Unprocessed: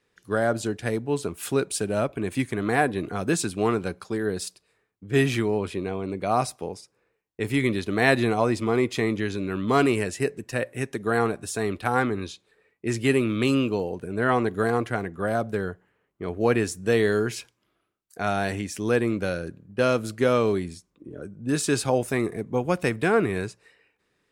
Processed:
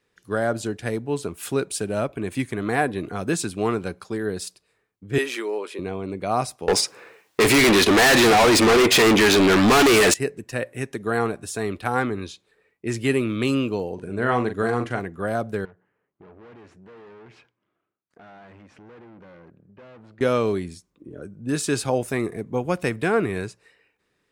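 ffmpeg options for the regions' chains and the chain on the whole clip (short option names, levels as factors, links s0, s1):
-filter_complex "[0:a]asettb=1/sr,asplit=3[s0][s1][s2];[s0]atrim=end=5.184[s3];[s1]atrim=start=5.18:end=5.79,asetpts=PTS-STARTPTS,afade=t=in:d=0.004:c=qsin,afade=t=out:st=0.606:d=0.004:c=qsin,highpass=f=360:w=0.5412,highpass=f=360:w=1.3066,bandreject=f=700:w=5.8[s4];[s2]atrim=start=5.786[s5];[s3][s4]acrossfade=d=0.004:c1=hsin:c2=qsin[s6];[s6][s5]acrossfade=d=0.004:c1=qsin:c2=hsin,asettb=1/sr,asplit=3[s7][s8][s9];[s7]atrim=end=6.684[s10];[s8]atrim=start=6.68:end=10.14,asetpts=PTS-STARTPTS,afade=t=in:d=0.004:c=qsin,afade=t=out:st=3.456:d=0.004:c=qsin,asplit=2[s11][s12];[s12]highpass=f=720:p=1,volume=50.1,asoftclip=type=tanh:threshold=0.708[s13];[s11][s13]amix=inputs=2:normalize=0,lowpass=f=6800:p=1,volume=0.501,asoftclip=type=hard:threshold=0.2[s14];[s9]atrim=start=10.136[s15];[s10][s14]acrossfade=d=0.004:c1=hsin:c2=qsin[s16];[s16][s15]acrossfade=d=0.004:c1=qsin:c2=hsin,asettb=1/sr,asplit=3[s17][s18][s19];[s17]atrim=end=13.944[s20];[s18]atrim=start=13.94:end=15,asetpts=PTS-STARTPTS,afade=t=in:d=0.004:c=qsin,afade=t=out:st=1.056:d=0.004:c=qsin,lowpass=9300,asplit=2[s21][s22];[s22]adelay=41,volume=0.398[s23];[s21][s23]amix=inputs=2:normalize=0,atrim=end_sample=46746[s24];[s19]atrim=start=14.996[s25];[s20][s24]acrossfade=d=0.004:c1=hsin:c2=qsin[s26];[s26][s25]acrossfade=d=0.004:c1=qsin:c2=hsin,asettb=1/sr,asplit=3[s27][s28][s29];[s27]atrim=end=15.654[s30];[s28]atrim=start=15.65:end=20.21,asetpts=PTS-STARTPTS,afade=t=in:d=0.004:c=qsin,afade=t=out:st=4.556:d=0.004:c=qsin,aeval=exprs='(tanh(63.1*val(0)+0.65)-tanh(0.65))/63.1':c=same,highpass=100,lowpass=2200,acompressor=threshold=0.00316:ratio=2:attack=3.2:release=140:knee=1:detection=peak[s31];[s29]atrim=start=20.206[s32];[s30][s31]acrossfade=d=0.004:c1=hsin:c2=qsin[s33];[s33][s32]acrossfade=d=0.004:c1=qsin:c2=hsin"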